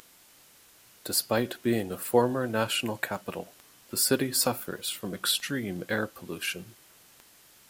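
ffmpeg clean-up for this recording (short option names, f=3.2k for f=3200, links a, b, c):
-af "adeclick=t=4,afftdn=nr=17:nf=-57"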